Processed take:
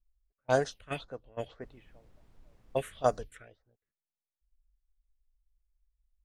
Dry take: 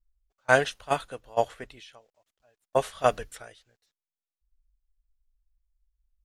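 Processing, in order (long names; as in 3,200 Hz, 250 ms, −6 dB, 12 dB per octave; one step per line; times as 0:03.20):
all-pass phaser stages 4, 2 Hz, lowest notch 780–3,000 Hz
low-pass that shuts in the quiet parts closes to 1,000 Hz, open at −26.5 dBFS
0:01.62–0:03.01: background noise brown −55 dBFS
level −3 dB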